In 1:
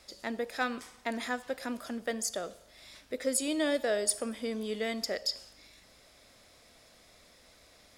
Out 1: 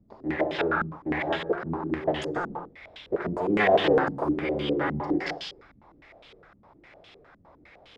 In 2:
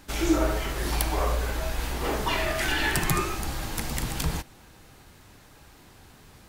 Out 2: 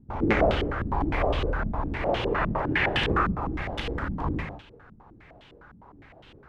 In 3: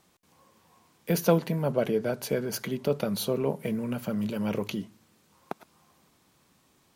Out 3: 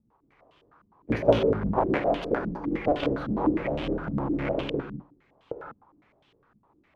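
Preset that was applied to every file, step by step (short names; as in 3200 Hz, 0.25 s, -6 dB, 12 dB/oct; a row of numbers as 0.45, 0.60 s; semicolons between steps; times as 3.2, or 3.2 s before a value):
cycle switcher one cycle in 3, inverted; non-linear reverb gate 0.22 s flat, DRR 2.5 dB; stepped low-pass 9.8 Hz 210–3100 Hz; match loudness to -27 LUFS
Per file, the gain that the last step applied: +2.0, -3.5, -4.0 dB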